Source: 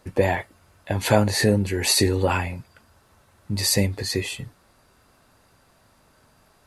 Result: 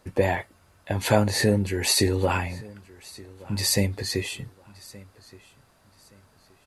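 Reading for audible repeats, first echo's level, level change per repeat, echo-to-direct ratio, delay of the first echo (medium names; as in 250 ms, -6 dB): 2, -22.0 dB, -11.0 dB, -21.5 dB, 1172 ms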